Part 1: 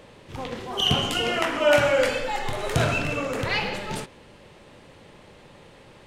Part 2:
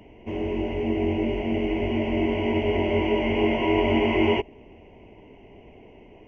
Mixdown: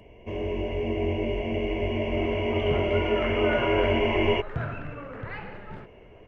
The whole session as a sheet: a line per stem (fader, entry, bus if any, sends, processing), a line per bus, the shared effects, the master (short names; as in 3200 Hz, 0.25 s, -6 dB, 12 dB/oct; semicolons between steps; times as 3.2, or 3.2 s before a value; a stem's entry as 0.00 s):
-14.5 dB, 1.80 s, no send, synth low-pass 1600 Hz, resonance Q 2.1; low shelf 190 Hz +10.5 dB
-2.0 dB, 0.00 s, no send, comb 1.8 ms, depth 48%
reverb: off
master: dry